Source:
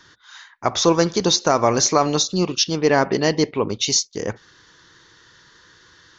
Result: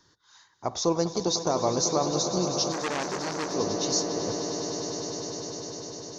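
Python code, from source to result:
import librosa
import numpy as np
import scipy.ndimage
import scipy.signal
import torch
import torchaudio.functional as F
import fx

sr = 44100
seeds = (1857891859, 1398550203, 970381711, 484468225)

y = fx.band_shelf(x, sr, hz=2100.0, db=-9.5, octaves=1.7)
y = fx.echo_swell(y, sr, ms=100, loudest=8, wet_db=-13)
y = fx.transformer_sat(y, sr, knee_hz=2400.0, at=(2.72, 3.53))
y = y * 10.0 ** (-8.5 / 20.0)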